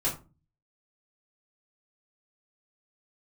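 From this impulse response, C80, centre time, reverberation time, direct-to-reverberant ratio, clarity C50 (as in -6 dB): 15.5 dB, 23 ms, 0.30 s, -7.5 dB, 9.5 dB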